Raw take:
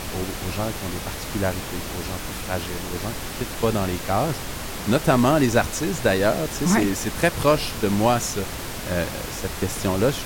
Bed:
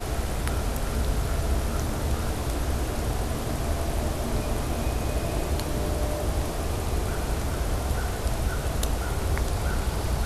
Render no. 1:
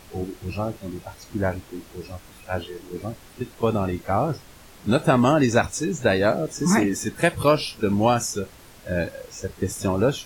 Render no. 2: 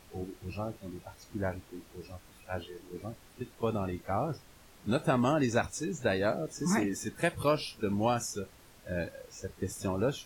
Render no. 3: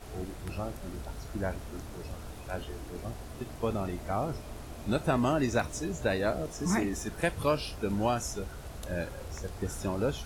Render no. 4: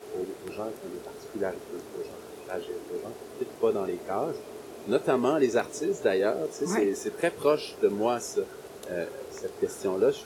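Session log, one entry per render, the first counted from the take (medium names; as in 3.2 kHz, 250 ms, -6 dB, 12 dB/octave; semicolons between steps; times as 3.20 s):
noise print and reduce 16 dB
trim -9.5 dB
add bed -15.5 dB
high-pass 230 Hz 12 dB/octave; peaking EQ 410 Hz +14 dB 0.45 oct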